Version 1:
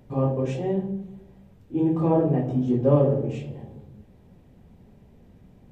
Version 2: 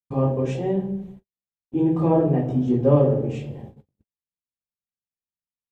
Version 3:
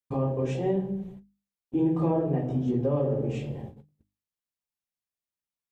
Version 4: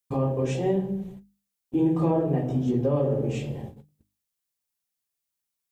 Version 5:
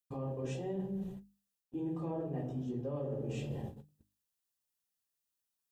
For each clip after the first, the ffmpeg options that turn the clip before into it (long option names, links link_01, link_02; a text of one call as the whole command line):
ffmpeg -i in.wav -af "agate=range=-60dB:threshold=-40dB:ratio=16:detection=peak,volume=2dB" out.wav
ffmpeg -i in.wav -af "alimiter=limit=-16.5dB:level=0:latency=1:release=455,bandreject=frequency=50:width_type=h:width=6,bandreject=frequency=100:width_type=h:width=6,bandreject=frequency=150:width_type=h:width=6,bandreject=frequency=200:width_type=h:width=6,bandreject=frequency=250:width_type=h:width=6,bandreject=frequency=300:width_type=h:width=6" out.wav
ffmpeg -i in.wav -af "highshelf=frequency=4600:gain=9,volume=2dB" out.wav
ffmpeg -i in.wav -af "areverse,acompressor=threshold=-32dB:ratio=6,areverse,asuperstop=centerf=2200:order=4:qfactor=7.8,volume=-3.5dB" out.wav